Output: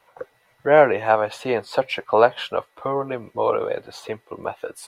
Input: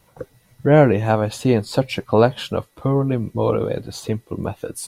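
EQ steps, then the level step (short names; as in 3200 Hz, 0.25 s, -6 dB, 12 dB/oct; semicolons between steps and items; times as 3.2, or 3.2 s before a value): three-band isolator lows -22 dB, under 480 Hz, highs -14 dB, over 3100 Hz; +4.0 dB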